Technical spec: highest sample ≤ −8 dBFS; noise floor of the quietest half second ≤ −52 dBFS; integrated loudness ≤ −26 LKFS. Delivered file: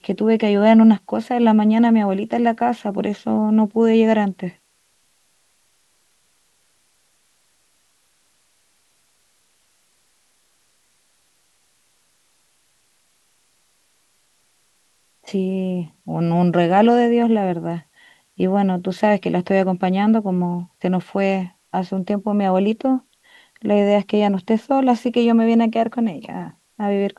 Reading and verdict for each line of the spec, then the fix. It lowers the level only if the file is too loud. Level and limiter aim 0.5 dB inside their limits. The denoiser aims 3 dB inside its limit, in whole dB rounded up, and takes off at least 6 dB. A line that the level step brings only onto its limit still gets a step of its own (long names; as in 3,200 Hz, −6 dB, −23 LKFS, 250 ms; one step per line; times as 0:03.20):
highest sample −3.5 dBFS: out of spec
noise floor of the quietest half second −62 dBFS: in spec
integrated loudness −18.5 LKFS: out of spec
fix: level −8 dB